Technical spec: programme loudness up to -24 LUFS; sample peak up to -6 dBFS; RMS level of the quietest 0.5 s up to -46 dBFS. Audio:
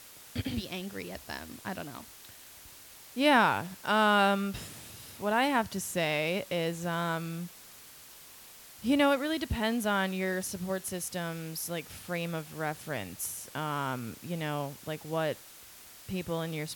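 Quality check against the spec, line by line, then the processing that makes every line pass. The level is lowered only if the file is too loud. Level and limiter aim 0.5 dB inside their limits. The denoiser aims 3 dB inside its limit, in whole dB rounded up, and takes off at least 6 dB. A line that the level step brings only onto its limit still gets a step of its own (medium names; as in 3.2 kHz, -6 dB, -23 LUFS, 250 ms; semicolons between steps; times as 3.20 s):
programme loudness -31.5 LUFS: pass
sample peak -10.0 dBFS: pass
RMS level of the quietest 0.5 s -51 dBFS: pass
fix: none needed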